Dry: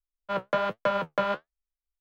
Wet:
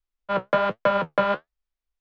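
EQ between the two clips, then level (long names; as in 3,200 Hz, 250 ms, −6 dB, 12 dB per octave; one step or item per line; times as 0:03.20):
high-frequency loss of the air 120 metres
+5.5 dB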